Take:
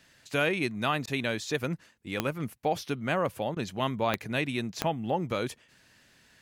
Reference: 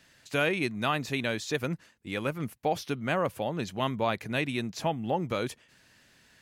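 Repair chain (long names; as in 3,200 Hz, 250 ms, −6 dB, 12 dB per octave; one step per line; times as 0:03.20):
click removal
repair the gap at 0:01.06/0:03.55, 13 ms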